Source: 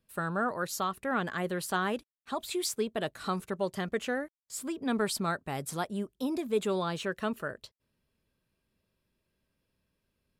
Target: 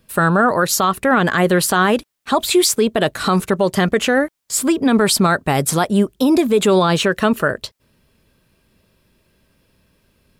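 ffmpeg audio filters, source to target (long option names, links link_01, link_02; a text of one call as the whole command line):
ffmpeg -i in.wav -af "alimiter=level_in=24.5dB:limit=-1dB:release=50:level=0:latency=1,volume=-5dB" out.wav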